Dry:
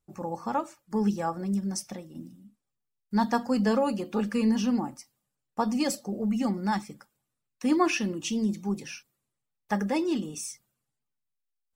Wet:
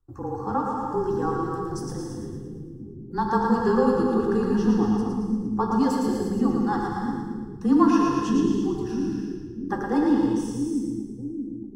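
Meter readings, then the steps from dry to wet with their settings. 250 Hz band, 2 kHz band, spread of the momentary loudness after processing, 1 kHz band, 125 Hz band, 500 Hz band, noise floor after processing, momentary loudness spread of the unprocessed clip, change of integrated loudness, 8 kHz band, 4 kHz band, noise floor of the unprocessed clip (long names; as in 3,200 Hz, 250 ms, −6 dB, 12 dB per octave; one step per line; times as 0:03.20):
+5.5 dB, 0.0 dB, 13 LU, +5.5 dB, +5.5 dB, +6.0 dB, −39 dBFS, 14 LU, +4.0 dB, can't be measured, −4.0 dB, −83 dBFS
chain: bass and treble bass +12 dB, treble −14 dB
frequency shifter −32 Hz
phaser with its sweep stopped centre 630 Hz, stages 6
on a send: echo with a time of its own for lows and highs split 340 Hz, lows 637 ms, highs 113 ms, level −4 dB
on the sum: reverb whose tail is shaped and stops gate 370 ms flat, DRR 1 dB
level +4 dB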